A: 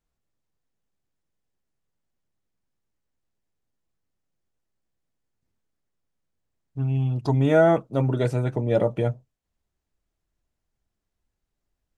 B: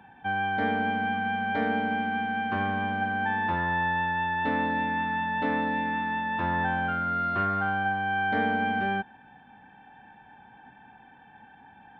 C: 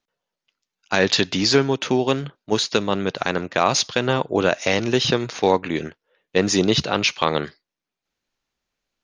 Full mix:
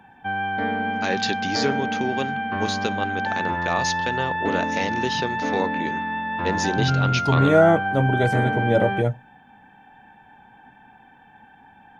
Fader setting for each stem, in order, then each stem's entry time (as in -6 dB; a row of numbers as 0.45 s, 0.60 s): +2.0 dB, +2.0 dB, -7.5 dB; 0.00 s, 0.00 s, 0.10 s